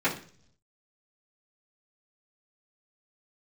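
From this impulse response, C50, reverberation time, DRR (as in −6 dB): 10.0 dB, 0.50 s, −11.5 dB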